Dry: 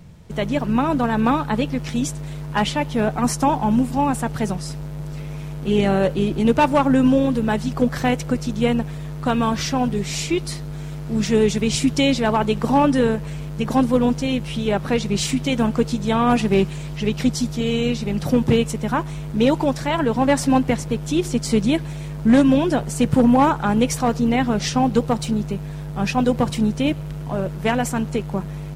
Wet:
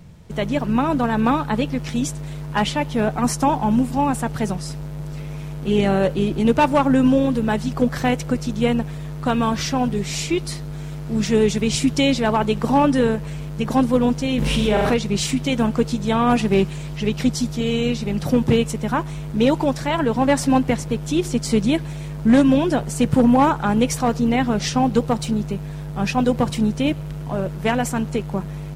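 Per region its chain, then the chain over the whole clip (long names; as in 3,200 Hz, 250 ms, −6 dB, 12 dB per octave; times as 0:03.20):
0:14.38–0:14.94: flutter between parallel walls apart 7.2 metres, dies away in 0.71 s + envelope flattener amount 70%
whole clip: no processing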